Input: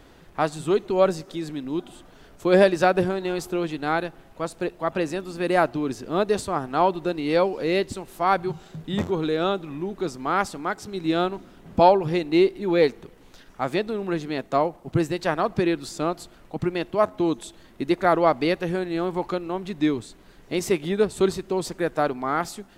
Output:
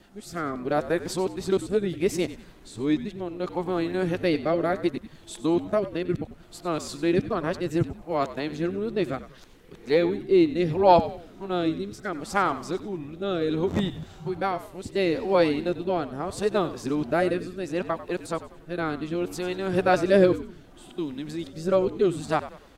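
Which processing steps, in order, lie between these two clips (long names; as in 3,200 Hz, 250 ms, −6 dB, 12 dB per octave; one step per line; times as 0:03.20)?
played backwards from end to start
rotating-speaker cabinet horn 0.7 Hz
echo with shifted repeats 94 ms, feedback 37%, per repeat −64 Hz, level −14 dB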